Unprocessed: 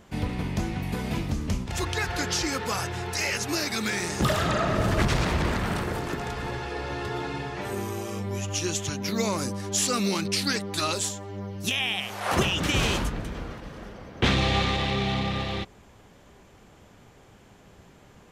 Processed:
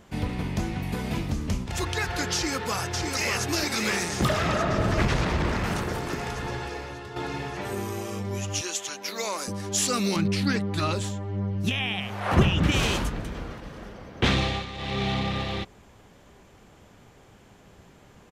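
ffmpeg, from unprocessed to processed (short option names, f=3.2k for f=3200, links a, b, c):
-filter_complex "[0:a]asplit=2[a][b];[b]afade=t=in:st=2.34:d=0.01,afade=t=out:st=3.45:d=0.01,aecho=0:1:590|1180|1770|2360|2950|3540|4130|4720|5310|5900|6490|7080:0.630957|0.44167|0.309169|0.216418|0.151493|0.106045|0.0742315|0.0519621|0.0363734|0.0254614|0.017823|0.0124761[c];[a][c]amix=inputs=2:normalize=0,asettb=1/sr,asplit=3[d][e][f];[d]atrim=end=4.284[g];[e]atrim=start=4.28:end=5.64,asetpts=PTS-STARTPTS,afade=t=in:d=0.004:c=qsin,afade=t=out:st=1.356:d=0.004:c=qsin,highshelf=f=6.9k:g=-10.5[h];[f]atrim=start=5.636[i];[g][h]acrossfade=d=0.004:c1=hsin:c2=qsin[j];[j][i]acrossfade=d=0.004:c1=qsin:c2=hsin,asettb=1/sr,asplit=3[k][l][m];[k]atrim=end=8.614[n];[l]atrim=start=8.61:end=9.48,asetpts=PTS-STARTPTS,afade=t=in:d=0.004:c=qsin,afade=t=out:st=0.866:d=0.004:c=qsin,highpass=530[o];[m]atrim=start=9.476[p];[n][o]acrossfade=d=0.004:c1=hsin:c2=qsin[q];[q][p]acrossfade=d=0.004:c1=qsin:c2=hsin,asettb=1/sr,asplit=3[r][s][t];[r]atrim=end=10.164[u];[s]atrim=start=10.16:end=12.72,asetpts=PTS-STARTPTS,afade=t=in:d=0.004:c=qsin,afade=t=out:st=2.556:d=0.004:c=qsin,bass=f=250:g=9,treble=f=4k:g=-11[v];[t]atrim=start=12.716[w];[u][v]acrossfade=d=0.004:c1=hsin:c2=qsin[x];[x][w]acrossfade=d=0.004:c1=qsin:c2=hsin,asplit=4[y][z][aa][ab];[y]atrim=end=7.16,asetpts=PTS-STARTPTS,afade=t=out:st=6.65:d=0.51:c=qua:silence=0.375837[ac];[z]atrim=start=7.16:end=14.66,asetpts=PTS-STARTPTS,afade=t=in:d=0.004:c=hsin:silence=0.375837,afade=t=out:st=7.2:d=0.3:silence=0.251189[ad];[aa]atrim=start=14.66:end=14.74,asetpts=PTS-STARTPTS,volume=-12dB[ae];[ab]atrim=start=14.74,asetpts=PTS-STARTPTS,afade=t=in:d=0.3:silence=0.251189[af];[ac][ad][ae][af]concat=n=4:v=0:a=1"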